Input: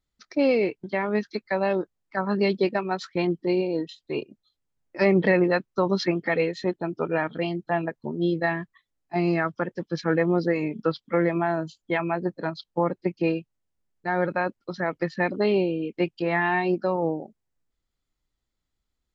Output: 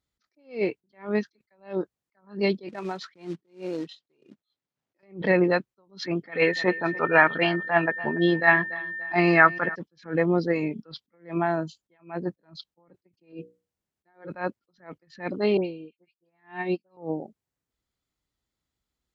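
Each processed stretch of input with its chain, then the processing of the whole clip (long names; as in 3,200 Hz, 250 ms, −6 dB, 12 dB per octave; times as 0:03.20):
0:02.69–0:05.03: downward compressor 16 to 1, threshold −25 dBFS + floating-point word with a short mantissa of 2 bits + band-pass filter 130–5,000 Hz
0:06.31–0:09.74: parametric band 1,600 Hz +13 dB 2.5 octaves + steady tone 1,800 Hz −31 dBFS + repeating echo 288 ms, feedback 42%, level −21.5 dB
0:13.32–0:14.28: mains-hum notches 60/120/180/240/300/360/420/480/540 Hz + dynamic equaliser 370 Hz, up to +7 dB, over −43 dBFS, Q 1.5
0:15.57–0:16.97: all-pass dispersion highs, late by 93 ms, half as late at 2,200 Hz + expander for the loud parts 2.5 to 1, over −38 dBFS
whole clip: high-pass filter 60 Hz; level that may rise only so fast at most 200 dB per second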